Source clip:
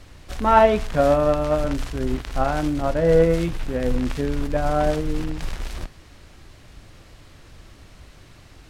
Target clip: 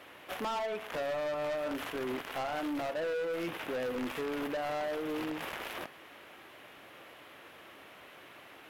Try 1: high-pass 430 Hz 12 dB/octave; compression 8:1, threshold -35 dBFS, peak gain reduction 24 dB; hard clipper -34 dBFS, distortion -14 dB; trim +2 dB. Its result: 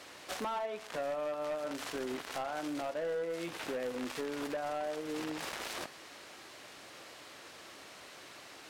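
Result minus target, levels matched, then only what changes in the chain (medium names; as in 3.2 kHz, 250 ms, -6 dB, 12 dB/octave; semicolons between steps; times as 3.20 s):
8 kHz band +8.0 dB; compression: peak gain reduction +5.5 dB
add after high-pass: high-order bell 6.1 kHz -13.5 dB 1.4 oct; change: compression 8:1, threshold -28.5 dBFS, peak gain reduction 18 dB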